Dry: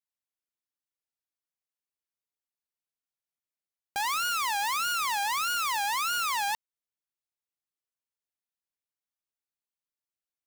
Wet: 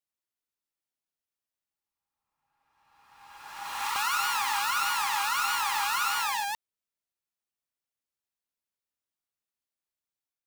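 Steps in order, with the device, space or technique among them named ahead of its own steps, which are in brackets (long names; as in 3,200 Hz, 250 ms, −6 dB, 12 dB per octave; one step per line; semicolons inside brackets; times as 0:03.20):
reverse reverb (reversed playback; convolution reverb RT60 1.8 s, pre-delay 101 ms, DRR −1 dB; reversed playback)
level −3 dB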